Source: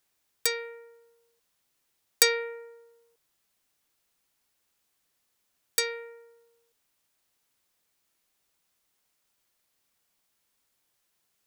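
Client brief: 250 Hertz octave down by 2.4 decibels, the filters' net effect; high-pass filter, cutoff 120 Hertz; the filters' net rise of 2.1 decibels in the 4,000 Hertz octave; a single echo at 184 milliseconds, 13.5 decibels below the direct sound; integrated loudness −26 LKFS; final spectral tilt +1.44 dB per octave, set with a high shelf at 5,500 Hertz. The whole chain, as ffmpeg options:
ffmpeg -i in.wav -af "highpass=120,equalizer=frequency=250:width_type=o:gain=-3.5,equalizer=frequency=4000:width_type=o:gain=5,highshelf=frequency=5500:gain=-6,aecho=1:1:184:0.211,volume=2dB" out.wav

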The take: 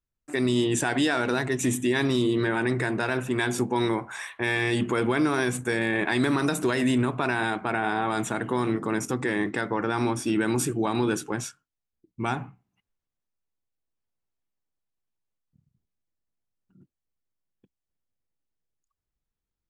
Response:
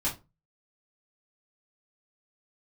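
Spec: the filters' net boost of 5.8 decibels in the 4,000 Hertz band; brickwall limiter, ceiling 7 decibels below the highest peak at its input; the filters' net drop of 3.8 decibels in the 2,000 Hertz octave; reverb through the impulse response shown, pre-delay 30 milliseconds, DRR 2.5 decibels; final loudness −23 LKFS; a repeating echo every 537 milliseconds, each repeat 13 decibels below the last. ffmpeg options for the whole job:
-filter_complex "[0:a]equalizer=frequency=2000:width_type=o:gain=-7,equalizer=frequency=4000:width_type=o:gain=9,alimiter=limit=-18.5dB:level=0:latency=1,aecho=1:1:537|1074|1611:0.224|0.0493|0.0108,asplit=2[link_01][link_02];[1:a]atrim=start_sample=2205,adelay=30[link_03];[link_02][link_03]afir=irnorm=-1:irlink=0,volume=-9dB[link_04];[link_01][link_04]amix=inputs=2:normalize=0,volume=3dB"

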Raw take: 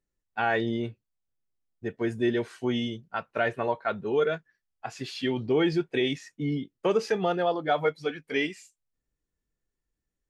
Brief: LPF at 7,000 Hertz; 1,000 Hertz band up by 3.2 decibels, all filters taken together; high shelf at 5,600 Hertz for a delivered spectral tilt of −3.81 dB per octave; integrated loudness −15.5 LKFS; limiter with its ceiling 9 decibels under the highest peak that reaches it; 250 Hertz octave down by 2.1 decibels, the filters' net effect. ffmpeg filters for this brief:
ffmpeg -i in.wav -af "lowpass=7000,equalizer=frequency=250:width_type=o:gain=-3.5,equalizer=frequency=1000:width_type=o:gain=5,highshelf=frequency=5600:gain=4,volume=16.5dB,alimiter=limit=-3.5dB:level=0:latency=1" out.wav

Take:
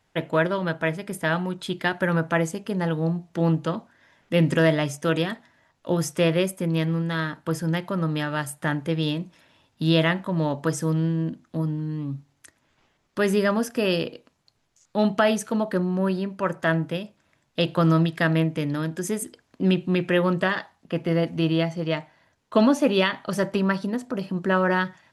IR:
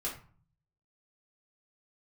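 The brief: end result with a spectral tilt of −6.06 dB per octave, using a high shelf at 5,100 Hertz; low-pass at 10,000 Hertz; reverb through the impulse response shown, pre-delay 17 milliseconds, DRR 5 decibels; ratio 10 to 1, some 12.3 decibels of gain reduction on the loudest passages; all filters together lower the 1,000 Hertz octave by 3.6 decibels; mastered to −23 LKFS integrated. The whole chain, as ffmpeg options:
-filter_complex "[0:a]lowpass=10000,equalizer=frequency=1000:width_type=o:gain=-4.5,highshelf=frequency=5100:gain=-5.5,acompressor=threshold=-28dB:ratio=10,asplit=2[link_01][link_02];[1:a]atrim=start_sample=2205,adelay=17[link_03];[link_02][link_03]afir=irnorm=-1:irlink=0,volume=-7.5dB[link_04];[link_01][link_04]amix=inputs=2:normalize=0,volume=9dB"

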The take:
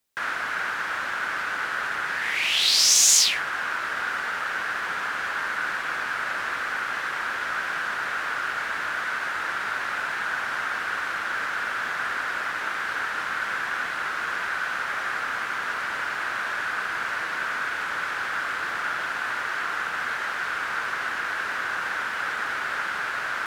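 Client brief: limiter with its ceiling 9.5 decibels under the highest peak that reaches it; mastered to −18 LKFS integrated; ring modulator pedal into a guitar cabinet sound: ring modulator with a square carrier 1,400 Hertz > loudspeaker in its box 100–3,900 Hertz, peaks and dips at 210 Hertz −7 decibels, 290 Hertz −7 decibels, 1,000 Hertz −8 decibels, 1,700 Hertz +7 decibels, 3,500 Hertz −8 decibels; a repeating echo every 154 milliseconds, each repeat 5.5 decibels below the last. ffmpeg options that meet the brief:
ffmpeg -i in.wav -af "alimiter=limit=-13dB:level=0:latency=1,aecho=1:1:154|308|462|616|770|924|1078:0.531|0.281|0.149|0.079|0.0419|0.0222|0.0118,aeval=exprs='val(0)*sgn(sin(2*PI*1400*n/s))':channel_layout=same,highpass=100,equalizer=frequency=210:width_type=q:width=4:gain=-7,equalizer=frequency=290:width_type=q:width=4:gain=-7,equalizer=frequency=1000:width_type=q:width=4:gain=-8,equalizer=frequency=1700:width_type=q:width=4:gain=7,equalizer=frequency=3500:width_type=q:width=4:gain=-8,lowpass=frequency=3900:width=0.5412,lowpass=frequency=3900:width=1.3066,volume=10.5dB" out.wav

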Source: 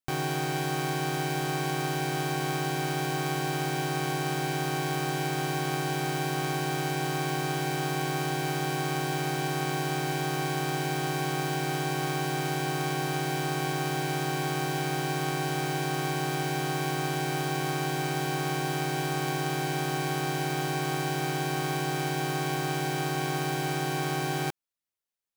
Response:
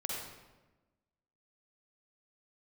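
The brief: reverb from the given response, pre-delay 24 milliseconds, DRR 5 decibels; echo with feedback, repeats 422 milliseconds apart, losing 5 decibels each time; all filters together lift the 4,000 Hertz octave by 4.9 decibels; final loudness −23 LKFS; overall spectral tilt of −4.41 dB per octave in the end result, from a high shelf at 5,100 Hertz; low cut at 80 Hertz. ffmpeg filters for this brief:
-filter_complex "[0:a]highpass=80,equalizer=frequency=4000:width_type=o:gain=7.5,highshelf=frequency=5100:gain=-3,aecho=1:1:422|844|1266|1688|2110|2532|2954:0.562|0.315|0.176|0.0988|0.0553|0.031|0.0173,asplit=2[link_01][link_02];[1:a]atrim=start_sample=2205,adelay=24[link_03];[link_02][link_03]afir=irnorm=-1:irlink=0,volume=-7.5dB[link_04];[link_01][link_04]amix=inputs=2:normalize=0,volume=3dB"

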